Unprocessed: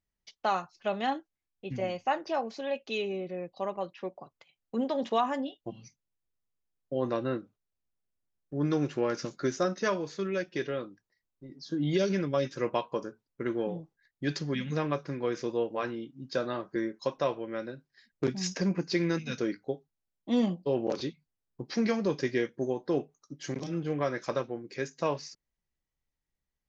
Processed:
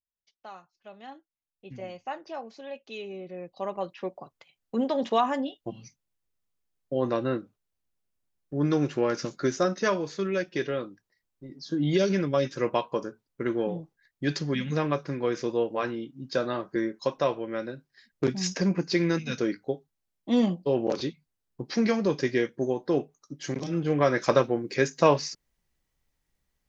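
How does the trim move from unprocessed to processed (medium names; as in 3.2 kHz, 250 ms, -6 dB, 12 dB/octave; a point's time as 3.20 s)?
0.95 s -16 dB
1.68 s -6.5 dB
2.96 s -6.5 dB
3.90 s +3.5 dB
23.64 s +3.5 dB
24.29 s +10 dB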